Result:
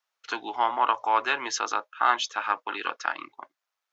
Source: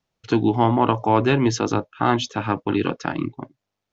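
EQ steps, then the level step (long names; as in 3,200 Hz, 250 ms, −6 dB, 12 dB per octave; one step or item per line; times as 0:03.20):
high-pass filter 650 Hz 12 dB per octave
spectral tilt +2 dB per octave
parametric band 1,300 Hz +8.5 dB 1.3 octaves
−6.5 dB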